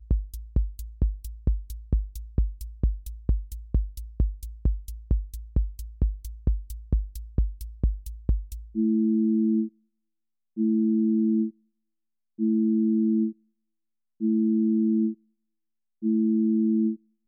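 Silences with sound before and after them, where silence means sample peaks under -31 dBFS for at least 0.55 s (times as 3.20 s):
9.67–10.57 s
11.49–12.39 s
13.31–14.21 s
15.13–16.03 s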